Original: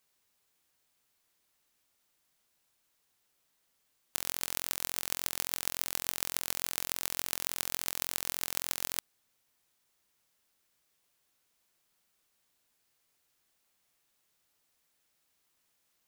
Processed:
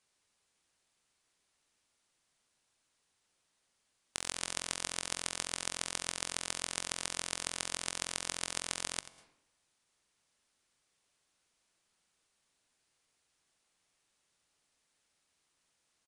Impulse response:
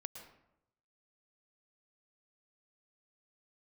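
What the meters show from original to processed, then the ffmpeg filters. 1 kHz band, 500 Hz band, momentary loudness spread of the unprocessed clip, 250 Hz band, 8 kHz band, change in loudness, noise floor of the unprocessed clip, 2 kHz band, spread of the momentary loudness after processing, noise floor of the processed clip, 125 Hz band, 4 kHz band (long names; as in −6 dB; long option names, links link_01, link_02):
+0.5 dB, +0.5 dB, 1 LU, +0.5 dB, −0.5 dB, −3.5 dB, −76 dBFS, 0.0 dB, 2 LU, −79 dBFS, −1.0 dB, 0.0 dB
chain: -filter_complex "[0:a]asplit=2[link_01][link_02];[1:a]atrim=start_sample=2205,adelay=88[link_03];[link_02][link_03]afir=irnorm=-1:irlink=0,volume=-10.5dB[link_04];[link_01][link_04]amix=inputs=2:normalize=0,aresample=22050,aresample=44100"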